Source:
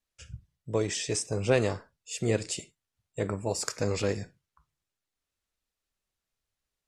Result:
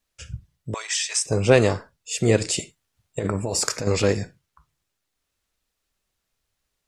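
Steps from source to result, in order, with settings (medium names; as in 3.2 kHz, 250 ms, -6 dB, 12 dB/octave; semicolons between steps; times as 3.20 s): 0.74–1.26 s: high-pass 1 kHz 24 dB/octave; 2.41–3.87 s: compressor with a negative ratio -33 dBFS, ratio -1; trim +8.5 dB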